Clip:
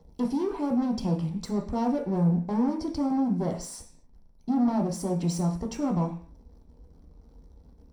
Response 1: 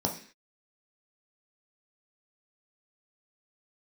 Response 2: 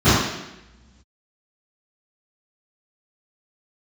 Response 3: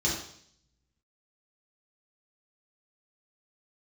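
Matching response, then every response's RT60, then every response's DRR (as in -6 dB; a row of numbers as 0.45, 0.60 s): 1; 0.45, 0.95, 0.60 s; 1.0, -21.5, -6.0 dB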